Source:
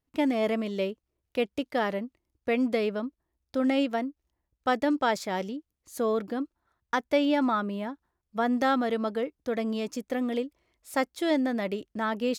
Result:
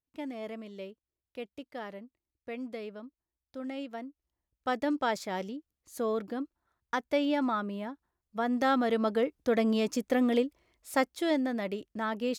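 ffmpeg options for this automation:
-af "volume=1.41,afade=t=in:st=3.82:d=1.1:silence=0.354813,afade=t=in:st=8.47:d=0.92:silence=0.446684,afade=t=out:st=10.45:d=0.95:silence=0.473151"

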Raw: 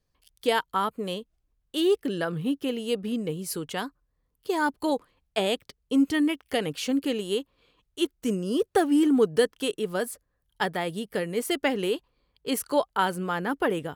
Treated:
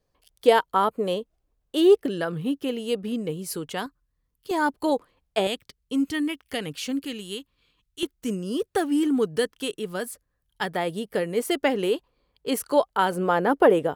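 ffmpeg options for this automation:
-af "asetnsamples=n=441:p=0,asendcmd='2.06 equalizer g 1.5;3.86 equalizer g -7;4.51 equalizer g 3.5;5.47 equalizer g -5.5;7.05 equalizer g -12;8.03 equalizer g -3;10.73 equalizer g 4;13.12 equalizer g 11.5',equalizer=f=570:t=o:w=1.9:g=8.5"

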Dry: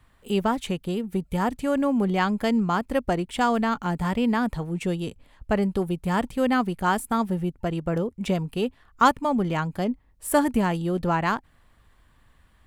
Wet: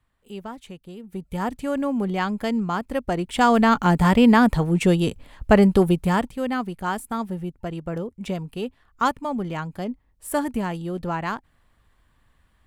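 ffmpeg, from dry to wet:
-af "volume=2.66,afade=t=in:st=0.97:d=0.48:silence=0.298538,afade=t=in:st=3.07:d=0.76:silence=0.316228,afade=t=out:st=5.89:d=0.42:silence=0.251189"

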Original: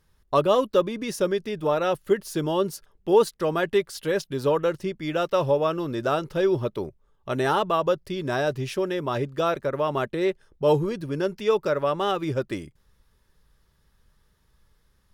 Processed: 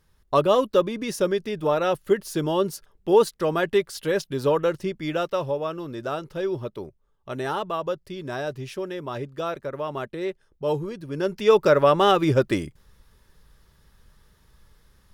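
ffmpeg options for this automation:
-af "volume=4.47,afade=t=out:st=5.06:d=0.4:silence=0.501187,afade=t=in:st=11.06:d=0.62:silence=0.251189"

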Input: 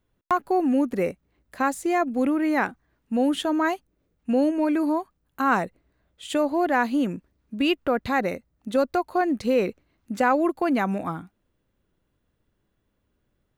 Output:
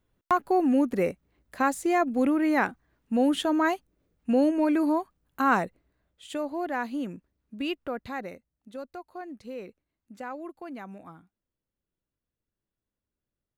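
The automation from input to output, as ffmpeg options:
-af "volume=0.891,afade=t=out:st=5.47:d=0.8:silence=0.421697,afade=t=out:st=7.69:d=1.03:silence=0.375837"

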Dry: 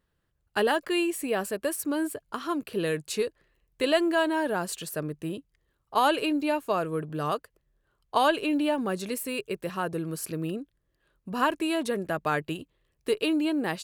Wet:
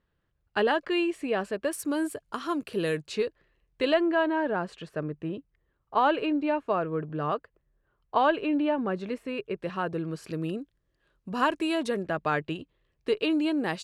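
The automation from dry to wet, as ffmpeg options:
-af "asetnsamples=n=441:p=0,asendcmd='1.73 lowpass f 9600;3 lowpass f 4300;3.94 lowpass f 2300;9.58 lowpass f 3900;10.3 lowpass f 7400;12.02 lowpass f 4400;13.3 lowpass f 7300',lowpass=3800"

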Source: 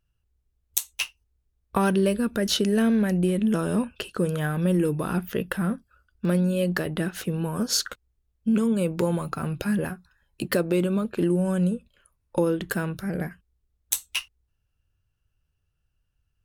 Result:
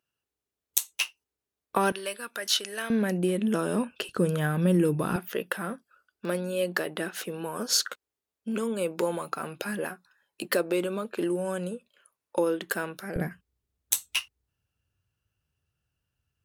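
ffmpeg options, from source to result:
-af "asetnsamples=n=441:p=0,asendcmd='1.92 highpass f 960;2.9 highpass f 240;4.09 highpass f 100;5.16 highpass f 380;13.16 highpass f 95',highpass=300"

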